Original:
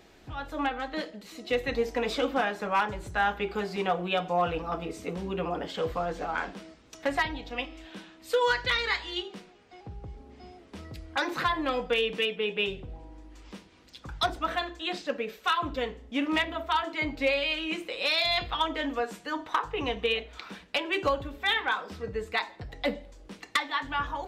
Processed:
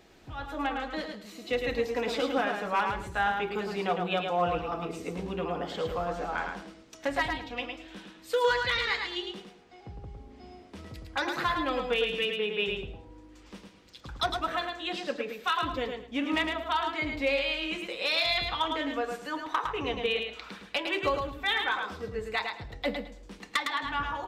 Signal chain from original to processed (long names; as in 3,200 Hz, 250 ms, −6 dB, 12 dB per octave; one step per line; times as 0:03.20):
repeating echo 108 ms, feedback 22%, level −5 dB
level −2 dB